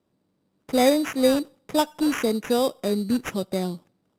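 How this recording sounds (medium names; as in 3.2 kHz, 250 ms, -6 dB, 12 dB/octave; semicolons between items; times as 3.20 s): aliases and images of a low sample rate 4.3 kHz, jitter 0%; AAC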